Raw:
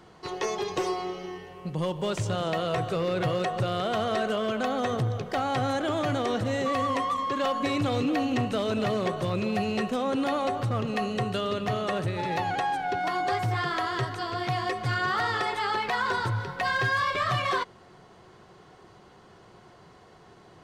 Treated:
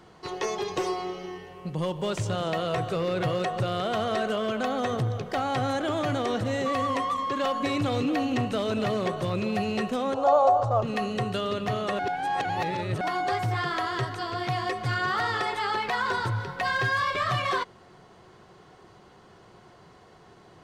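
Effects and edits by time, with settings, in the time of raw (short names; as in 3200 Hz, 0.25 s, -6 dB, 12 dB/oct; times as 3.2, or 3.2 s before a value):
10.14–10.83 EQ curve 110 Hz 0 dB, 170 Hz -16 dB, 390 Hz -5 dB, 620 Hz +13 dB, 1100 Hz +6 dB, 2000 Hz -14 dB, 7100 Hz -1 dB, 11000 Hz -20 dB
11.99–13.01 reverse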